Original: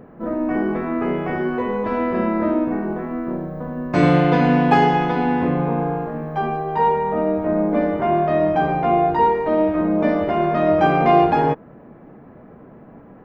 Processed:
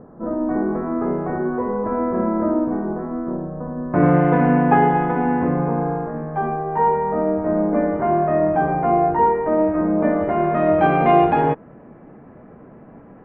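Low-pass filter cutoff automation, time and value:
low-pass filter 24 dB per octave
0:03.80 1,400 Hz
0:04.27 1,900 Hz
0:10.10 1,900 Hz
0:11.02 3,000 Hz

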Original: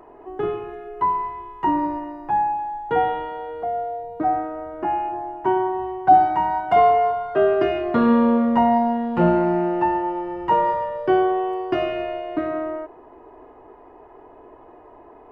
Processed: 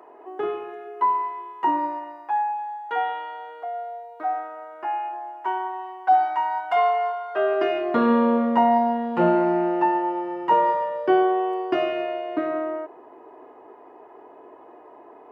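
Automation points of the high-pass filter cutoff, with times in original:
0:01.67 390 Hz
0:02.39 880 Hz
0:07.22 880 Hz
0:07.94 250 Hz

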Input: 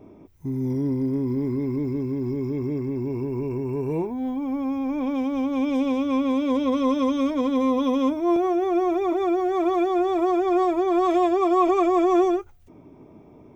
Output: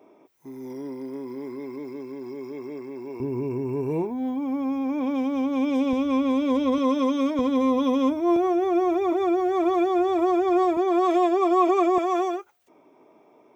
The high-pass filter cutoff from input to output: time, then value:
490 Hz
from 0:03.20 120 Hz
from 0:05.93 49 Hz
from 0:06.78 180 Hz
from 0:07.39 58 Hz
from 0:10.77 230 Hz
from 0:11.98 520 Hz

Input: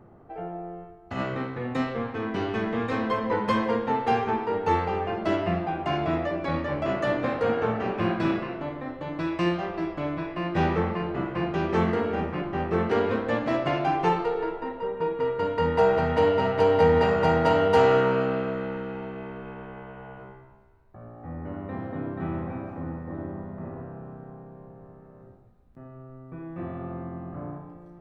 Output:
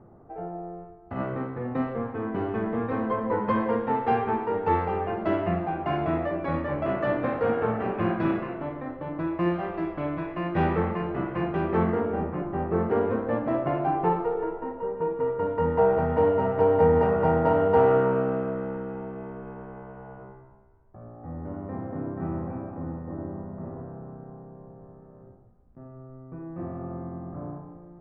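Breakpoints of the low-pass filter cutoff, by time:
0:03.20 1,300 Hz
0:03.96 2,000 Hz
0:08.82 2,000 Hz
0:09.34 1,300 Hz
0:09.69 2,300 Hz
0:11.40 2,300 Hz
0:12.18 1,200 Hz

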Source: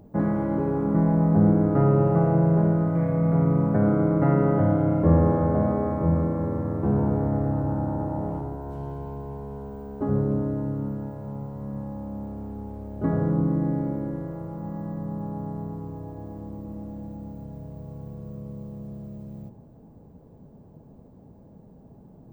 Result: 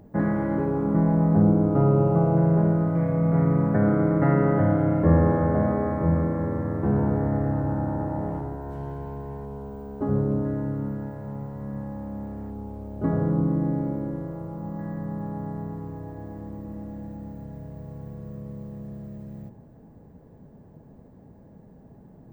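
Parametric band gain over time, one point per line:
parametric band 1,800 Hz 0.48 octaves
+8.5 dB
from 0:00.65 +1 dB
from 0:01.42 −9 dB
from 0:02.37 +1 dB
from 0:03.34 +8.5 dB
from 0:09.45 +0.5 dB
from 0:10.45 +9.5 dB
from 0:12.50 −1 dB
from 0:14.79 +10.5 dB

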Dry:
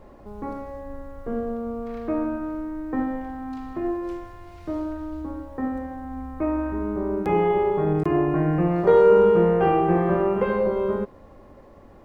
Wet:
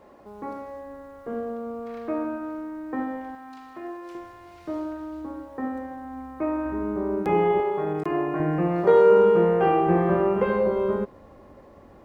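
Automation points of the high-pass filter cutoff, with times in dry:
high-pass filter 6 dB per octave
340 Hz
from 0:03.35 1,100 Hz
from 0:04.15 270 Hz
from 0:06.65 120 Hz
from 0:07.60 480 Hz
from 0:08.40 200 Hz
from 0:09.87 60 Hz

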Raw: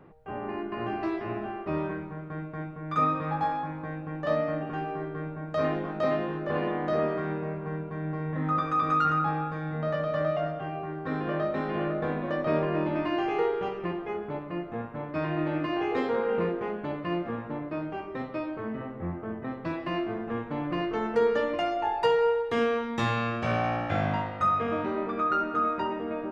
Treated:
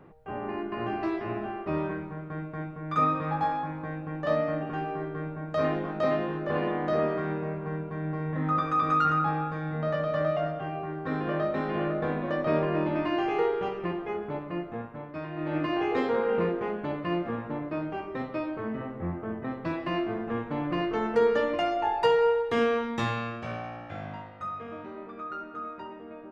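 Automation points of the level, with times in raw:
0:14.59 +0.5 dB
0:15.32 −8 dB
0:15.57 +1 dB
0:22.86 +1 dB
0:23.72 −11 dB

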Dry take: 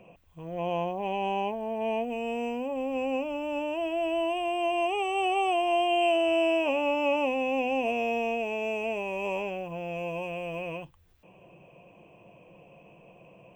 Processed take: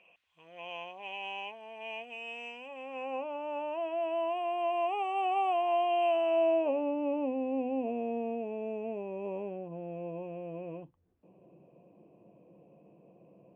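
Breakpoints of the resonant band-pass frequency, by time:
resonant band-pass, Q 1.2
0:02.60 2,800 Hz
0:03.20 1,000 Hz
0:06.25 1,000 Hz
0:06.94 280 Hz

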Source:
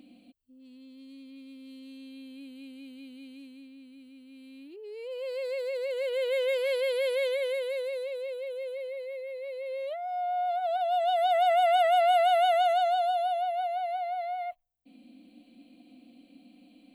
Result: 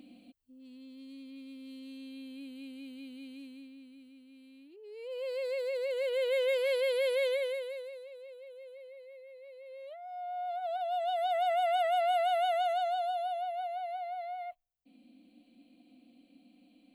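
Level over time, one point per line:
0:03.53 0 dB
0:04.74 −8.5 dB
0:05.18 −1.5 dB
0:07.35 −1.5 dB
0:08.03 −13 dB
0:09.64 −13 dB
0:10.67 −6 dB

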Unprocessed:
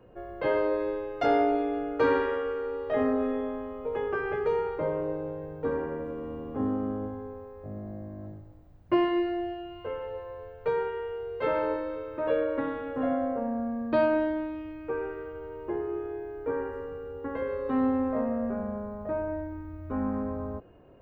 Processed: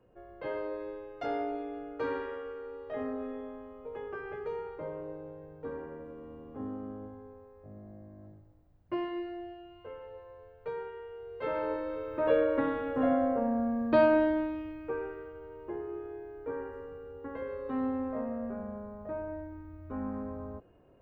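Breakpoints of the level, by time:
0:11.10 −10 dB
0:12.21 +1 dB
0:14.40 +1 dB
0:15.35 −6.5 dB

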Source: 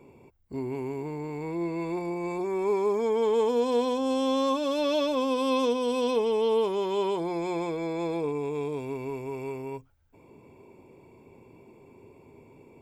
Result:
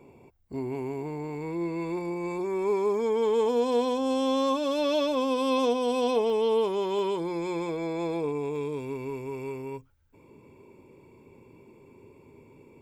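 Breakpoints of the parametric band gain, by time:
parametric band 710 Hz 0.25 octaves
+3.5 dB
from 0:01.35 −6.5 dB
from 0:03.46 +2 dB
from 0:05.58 +9.5 dB
from 0:06.30 0 dB
from 0:06.99 −12 dB
from 0:07.69 −1 dB
from 0:08.56 −12 dB

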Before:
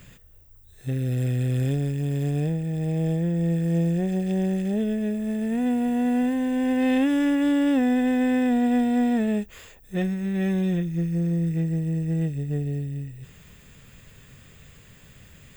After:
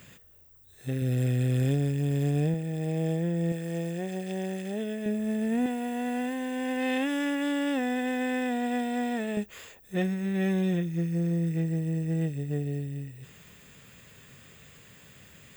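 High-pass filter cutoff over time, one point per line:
high-pass filter 6 dB per octave
190 Hz
from 0:01.02 91 Hz
from 0:02.54 240 Hz
from 0:03.52 600 Hz
from 0:05.06 180 Hz
from 0:05.66 670 Hz
from 0:09.37 190 Hz

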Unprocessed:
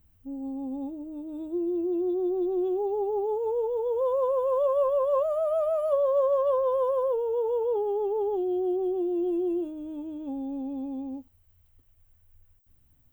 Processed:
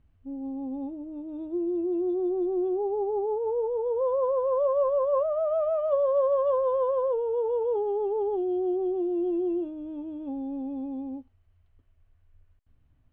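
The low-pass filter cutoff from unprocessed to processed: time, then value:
0:02.22 2,800 Hz
0:02.64 1,800 Hz
0:05.14 1,800 Hz
0:05.88 2,800 Hz

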